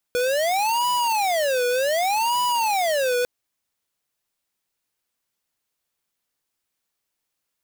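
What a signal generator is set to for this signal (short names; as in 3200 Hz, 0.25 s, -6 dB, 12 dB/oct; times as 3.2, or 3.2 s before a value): siren wail 489–985 Hz 0.66/s square -21.5 dBFS 3.10 s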